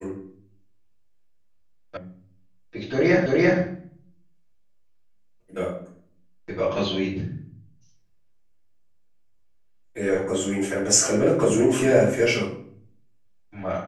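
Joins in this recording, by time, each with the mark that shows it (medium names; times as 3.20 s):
1.97 s: sound stops dead
3.26 s: repeat of the last 0.34 s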